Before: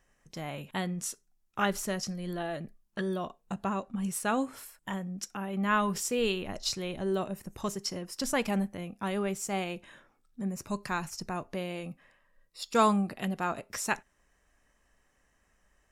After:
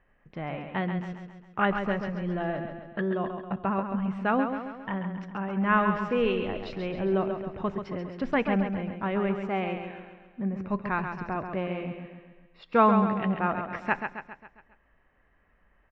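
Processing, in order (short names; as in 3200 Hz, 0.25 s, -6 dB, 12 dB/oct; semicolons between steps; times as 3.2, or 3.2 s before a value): LPF 2500 Hz 24 dB/oct; on a send: feedback echo 0.135 s, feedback 52%, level -7 dB; on the sum: gain +3.5 dB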